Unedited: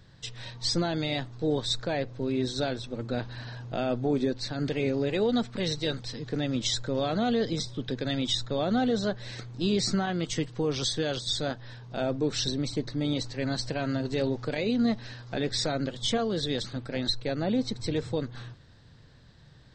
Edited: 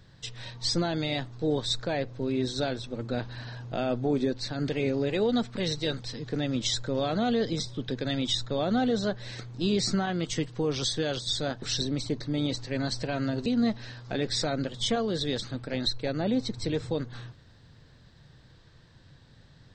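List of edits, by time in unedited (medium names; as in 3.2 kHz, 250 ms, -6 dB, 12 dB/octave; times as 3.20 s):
11.62–12.29 s: delete
14.13–14.68 s: delete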